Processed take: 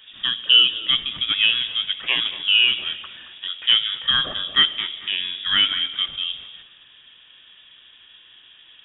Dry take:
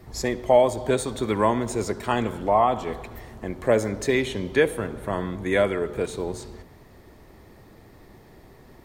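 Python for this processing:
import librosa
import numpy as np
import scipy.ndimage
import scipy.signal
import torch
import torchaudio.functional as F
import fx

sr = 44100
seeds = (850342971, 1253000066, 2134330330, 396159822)

y = scipy.signal.sosfilt(scipy.signal.butter(2, 150.0, 'highpass', fs=sr, output='sos'), x)
y = fx.echo_wet_highpass(y, sr, ms=223, feedback_pct=35, hz=1900.0, wet_db=-11)
y = fx.freq_invert(y, sr, carrier_hz=3600)
y = F.gain(torch.from_numpy(y), 2.5).numpy()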